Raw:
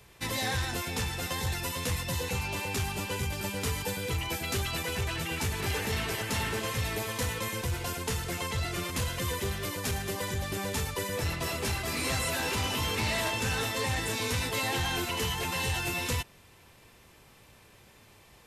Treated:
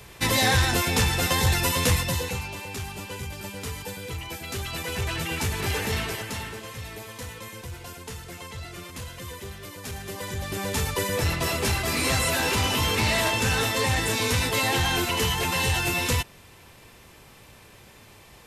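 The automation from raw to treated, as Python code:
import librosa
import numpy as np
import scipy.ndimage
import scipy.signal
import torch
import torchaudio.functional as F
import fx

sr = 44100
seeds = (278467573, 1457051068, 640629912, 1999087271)

y = fx.gain(x, sr, db=fx.line((1.9, 10.0), (2.56, -2.5), (4.44, -2.5), (5.11, 4.0), (5.96, 4.0), (6.61, -6.0), (9.7, -6.0), (10.91, 6.5)))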